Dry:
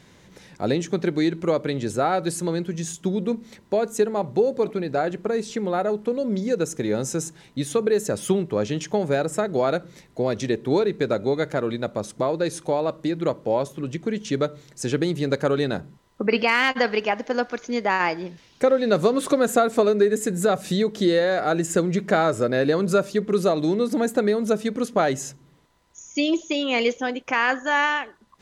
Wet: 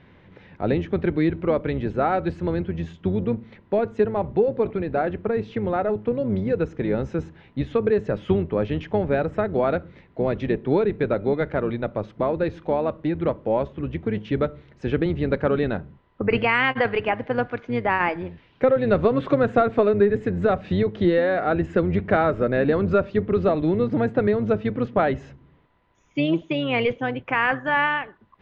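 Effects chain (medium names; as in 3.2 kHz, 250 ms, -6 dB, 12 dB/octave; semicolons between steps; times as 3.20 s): octave divider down 1 oct, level -5 dB; low-pass 2.9 kHz 24 dB/octave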